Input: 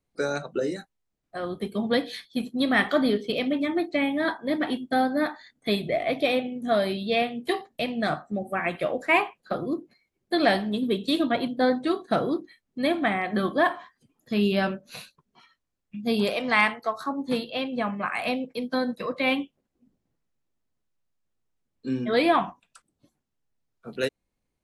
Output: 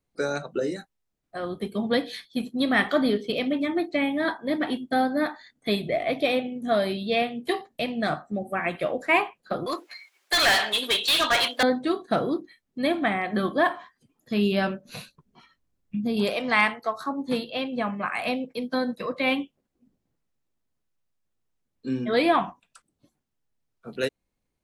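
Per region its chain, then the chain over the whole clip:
0:09.66–0:11.63: high-pass filter 1,100 Hz + mid-hump overdrive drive 29 dB, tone 6,600 Hz, clips at −13 dBFS
0:14.85–0:16.17: low-shelf EQ 420 Hz +9.5 dB + downward compressor, threshold −23 dBFS
whole clip: no processing

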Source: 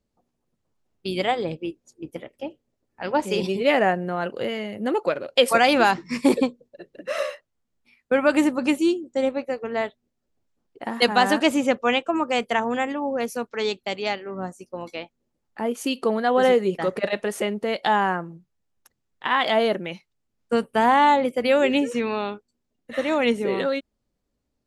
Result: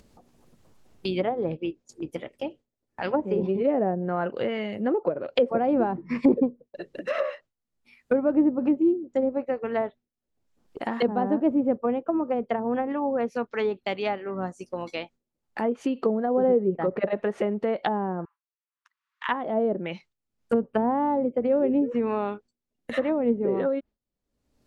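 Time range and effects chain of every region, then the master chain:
0:18.25–0:19.29: Butterworth high-pass 1,000 Hz 72 dB per octave + head-to-tape spacing loss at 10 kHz 32 dB
whole clip: noise gate with hold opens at −41 dBFS; treble cut that deepens with the level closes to 500 Hz, closed at −18.5 dBFS; upward compression, threshold −28 dBFS

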